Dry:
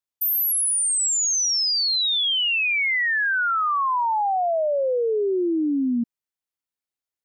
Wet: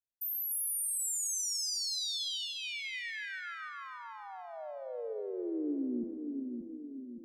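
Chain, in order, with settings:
guitar amp tone stack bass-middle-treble 10-0-1
notch filter 2,700 Hz, Q 6.3
on a send: echo with a time of its own for lows and highs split 370 Hz, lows 573 ms, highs 292 ms, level −4 dB
on the sum: rectangular room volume 2,000 cubic metres, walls mixed, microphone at 0.52 metres
level +6 dB

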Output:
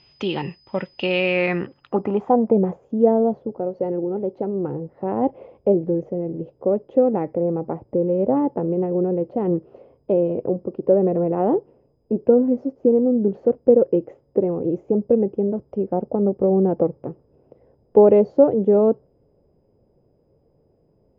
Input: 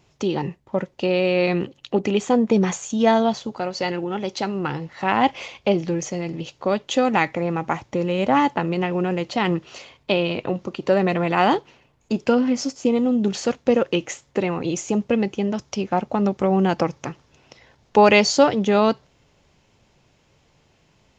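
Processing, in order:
steady tone 5,000 Hz −46 dBFS
low-pass filter sweep 3,000 Hz → 480 Hz, 0:01.11–0:02.79
level −2 dB

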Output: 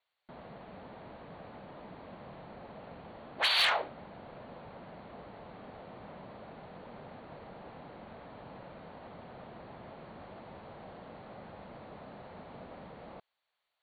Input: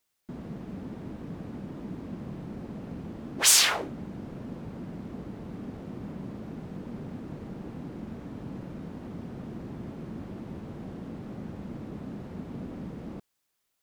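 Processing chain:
Chebyshev low-pass filter 4,500 Hz, order 10
low shelf with overshoot 440 Hz −11.5 dB, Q 1.5
soft clipping −19 dBFS, distortion −16 dB

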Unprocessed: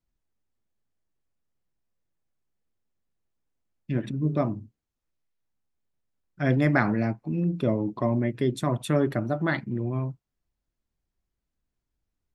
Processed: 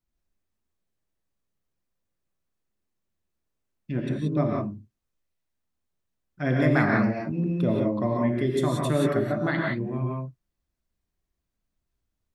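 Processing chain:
reverb whose tail is shaped and stops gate 200 ms rising, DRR −1.5 dB
level −2 dB

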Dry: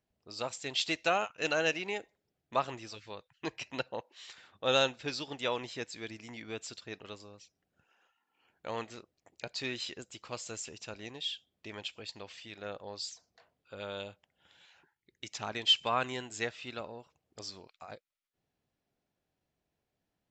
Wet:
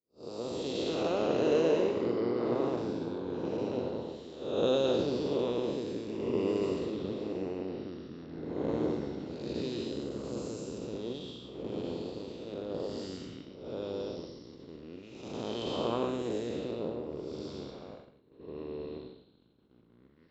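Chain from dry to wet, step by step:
spectrum smeared in time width 340 ms
delay with pitch and tempo change per echo 156 ms, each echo −5 semitones, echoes 2, each echo −6 dB
downward expander −51 dBFS
octave-band graphic EQ 125/250/500/1,000/2,000/4,000 Hz +6/+6/+8/+9/−7/+6 dB
harmonic and percussive parts rebalanced harmonic −13 dB
low shelf with overshoot 590 Hz +8.5 dB, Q 1.5
flutter between parallel walls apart 7.3 metres, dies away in 0.23 s

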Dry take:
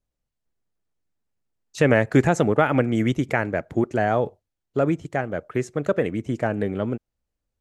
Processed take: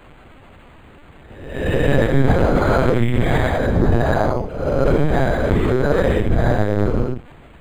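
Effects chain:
peak hold with a rise ahead of every peak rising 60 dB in 0.82 s
low shelf with overshoot 140 Hz +12 dB, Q 1.5
in parallel at 0 dB: downward compressor 16 to 1, threshold −24 dBFS, peak gain reduction 15.5 dB
on the sum: brickwall limiter −10.5 dBFS, peak gain reduction 8 dB
reverb whose tail is shaped and stops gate 240 ms flat, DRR −6 dB
background noise pink −39 dBFS
on a send: tape delay 68 ms, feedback 40%, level −17 dB, low-pass 1,400 Hz
on the sum: linear-prediction vocoder at 8 kHz pitch kept
linearly interpolated sample-rate reduction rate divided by 8×
level −3 dB

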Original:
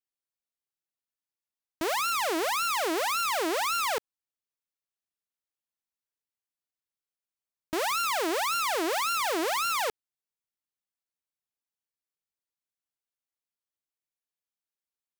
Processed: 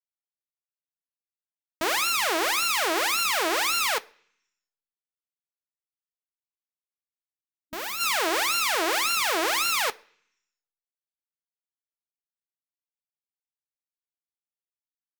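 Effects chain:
harmonic generator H 3 −10 dB, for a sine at −23 dBFS
gain on a spectral selection 0:05.85–0:08.00, 300–12,000 Hz −6 dB
far-end echo of a speakerphone 130 ms, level −21 dB
on a send at −8.5 dB: convolution reverb RT60 0.65 s, pre-delay 3 ms
on the sum: expander for the loud parts 1.5 to 1, over −50 dBFS
level +5 dB

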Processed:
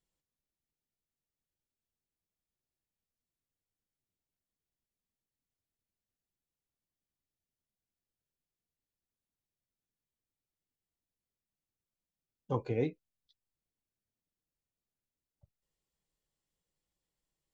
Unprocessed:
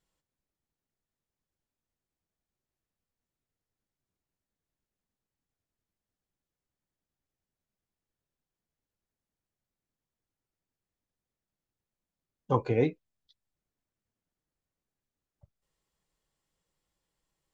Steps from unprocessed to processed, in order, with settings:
parametric band 1,200 Hz −5 dB 1.4 octaves
level −5.5 dB

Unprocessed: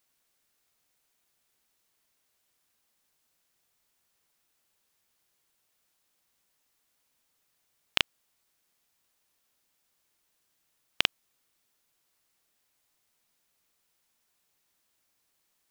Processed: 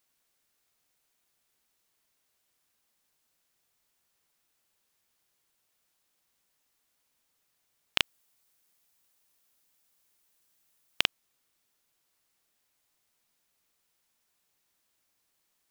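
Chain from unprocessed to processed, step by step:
0:08.00–0:11.03: high-shelf EQ 7,200 Hz +6.5 dB
level −1 dB

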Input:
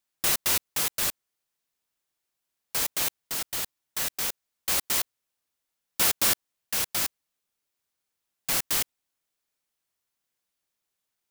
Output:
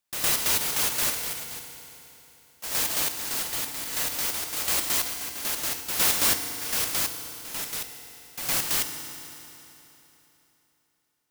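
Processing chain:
backwards echo 111 ms −8.5 dB
delay with pitch and tempo change per echo 407 ms, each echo +3 semitones, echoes 2, each echo −6 dB
feedback delay network reverb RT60 3.4 s, high-frequency decay 0.9×, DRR 6.5 dB

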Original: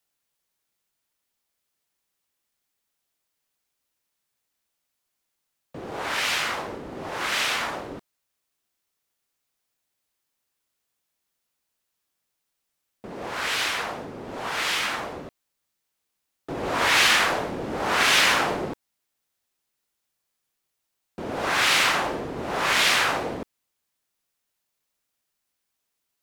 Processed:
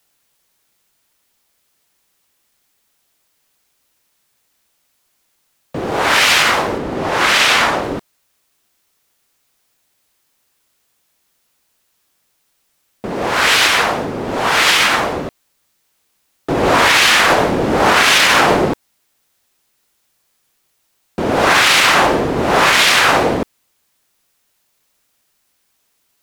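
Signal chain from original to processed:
0:06.78–0:07.83: high-shelf EQ 9,500 Hz −5.5 dB
boost into a limiter +16 dB
level −1 dB

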